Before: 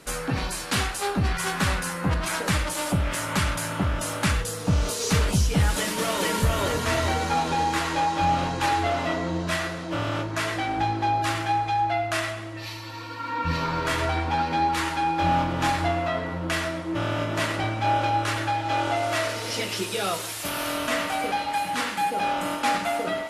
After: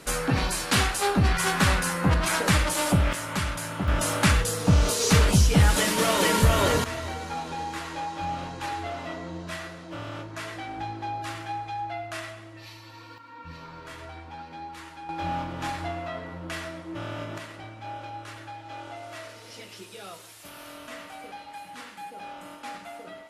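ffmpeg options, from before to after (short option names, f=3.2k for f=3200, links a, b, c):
-af "asetnsamples=n=441:p=0,asendcmd='3.13 volume volume -4dB;3.88 volume volume 3dB;6.84 volume volume -9dB;13.18 volume volume -16.5dB;15.09 volume volume -8dB;17.38 volume volume -15dB',volume=2.5dB"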